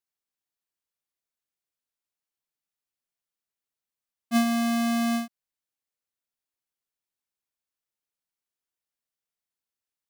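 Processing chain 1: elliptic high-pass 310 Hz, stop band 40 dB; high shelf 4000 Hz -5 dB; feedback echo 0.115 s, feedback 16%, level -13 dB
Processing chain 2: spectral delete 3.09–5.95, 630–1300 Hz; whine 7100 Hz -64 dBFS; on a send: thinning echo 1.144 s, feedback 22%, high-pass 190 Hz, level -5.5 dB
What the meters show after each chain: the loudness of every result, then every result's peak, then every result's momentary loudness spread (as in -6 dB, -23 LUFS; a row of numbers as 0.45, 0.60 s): -33.0, -28.5 LUFS; -17.5, -16.5 dBFS; 6, 22 LU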